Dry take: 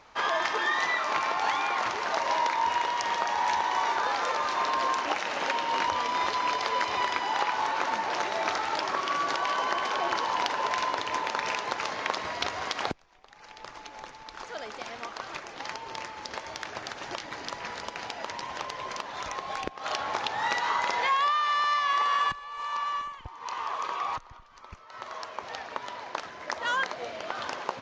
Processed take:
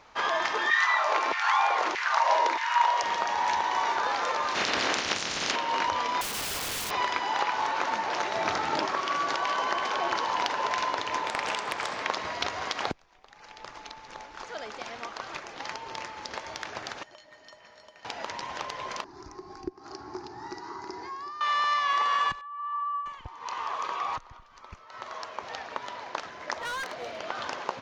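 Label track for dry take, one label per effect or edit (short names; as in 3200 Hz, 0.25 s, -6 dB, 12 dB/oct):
0.700000	3.030000	LFO high-pass saw down 1.6 Hz 270–2100 Hz
4.540000	5.550000	spectral limiter ceiling under each frame's peak by 24 dB
6.210000	6.910000	wrapped overs gain 28 dB
8.330000	8.850000	bell 81 Hz -> 240 Hz +11 dB 2 oct
11.270000	12.030000	Doppler distortion depth 0.55 ms
13.890000	14.310000	reverse
17.030000	18.050000	resonator 620 Hz, decay 0.16 s, harmonics odd, mix 90%
19.040000	21.410000	EQ curve 110 Hz 0 dB, 220 Hz -6 dB, 370 Hz +9 dB, 530 Hz -25 dB, 790 Hz -11 dB, 1600 Hz -16 dB, 3400 Hz -28 dB, 4800 Hz -6 dB, 10000 Hz -22 dB
22.410000	23.060000	spectral contrast raised exponent 2
26.600000	27.180000	hard clip -31.5 dBFS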